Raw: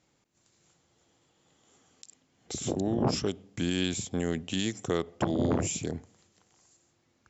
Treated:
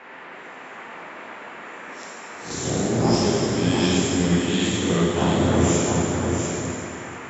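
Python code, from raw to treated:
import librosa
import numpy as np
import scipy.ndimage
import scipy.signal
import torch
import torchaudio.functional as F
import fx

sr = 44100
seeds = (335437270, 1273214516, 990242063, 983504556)

p1 = fx.spec_swells(x, sr, rise_s=0.4)
p2 = fx.wow_flutter(p1, sr, seeds[0], rate_hz=2.1, depth_cents=24.0)
p3 = fx.dmg_noise_band(p2, sr, seeds[1], low_hz=210.0, high_hz=2200.0, level_db=-46.0)
p4 = p3 + fx.echo_single(p3, sr, ms=695, db=-5.0, dry=0)
y = fx.rev_plate(p4, sr, seeds[2], rt60_s=2.7, hf_ratio=0.85, predelay_ms=0, drr_db=-6.0)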